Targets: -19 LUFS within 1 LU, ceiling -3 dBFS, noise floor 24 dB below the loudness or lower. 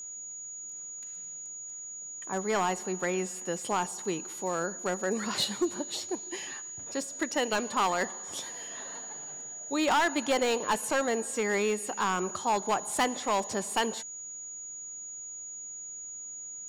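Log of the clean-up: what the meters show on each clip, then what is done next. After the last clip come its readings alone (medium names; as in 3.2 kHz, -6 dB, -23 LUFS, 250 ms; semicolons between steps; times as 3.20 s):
clipped samples 0.9%; clipping level -21.0 dBFS; steady tone 6.8 kHz; tone level -39 dBFS; loudness -31.5 LUFS; peak level -21.0 dBFS; loudness target -19.0 LUFS
-> clip repair -21 dBFS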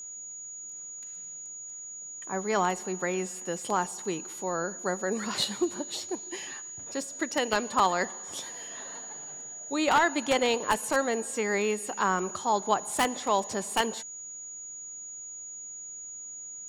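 clipped samples 0.0%; steady tone 6.8 kHz; tone level -39 dBFS
-> band-stop 6.8 kHz, Q 30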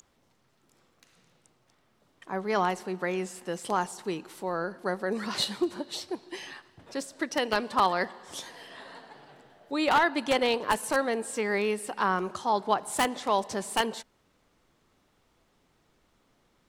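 steady tone not found; loudness -29.5 LUFS; peak level -11.5 dBFS; loudness target -19.0 LUFS
-> trim +10.5 dB; peak limiter -3 dBFS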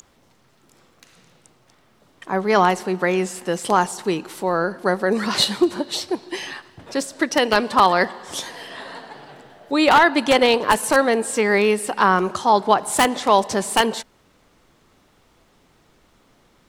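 loudness -19.5 LUFS; peak level -3.0 dBFS; noise floor -58 dBFS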